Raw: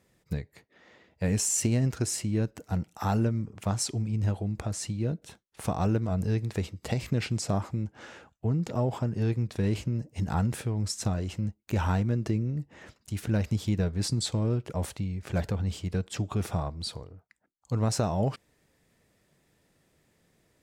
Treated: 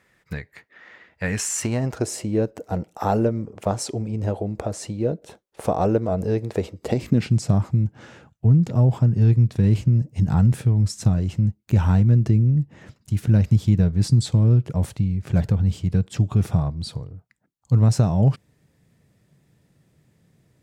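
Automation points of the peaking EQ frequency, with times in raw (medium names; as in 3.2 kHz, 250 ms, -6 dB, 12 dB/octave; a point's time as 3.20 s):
peaking EQ +13.5 dB 1.7 oct
1.46 s 1.7 kHz
2.08 s 520 Hz
6.76 s 520 Hz
7.39 s 130 Hz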